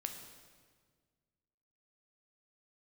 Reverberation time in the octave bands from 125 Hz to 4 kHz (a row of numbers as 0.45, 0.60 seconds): 2.2, 2.1, 1.8, 1.5, 1.4, 1.4 seconds